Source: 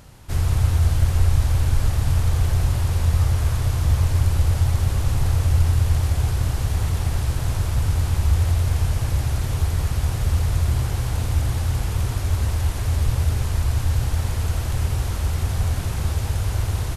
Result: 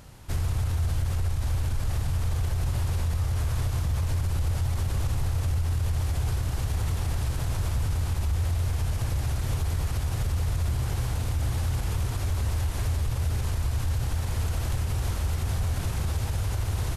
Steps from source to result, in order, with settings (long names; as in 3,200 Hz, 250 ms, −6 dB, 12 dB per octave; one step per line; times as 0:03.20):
brickwall limiter −17.5 dBFS, peak gain reduction 10.5 dB
level −2 dB